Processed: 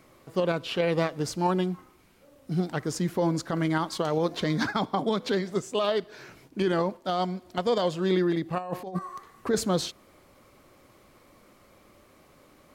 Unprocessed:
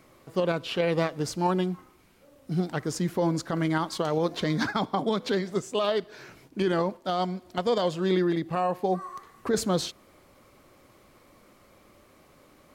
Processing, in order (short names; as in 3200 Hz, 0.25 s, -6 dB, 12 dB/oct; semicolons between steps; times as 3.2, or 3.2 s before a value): 8.58–8.99 negative-ratio compressor -31 dBFS, ratio -0.5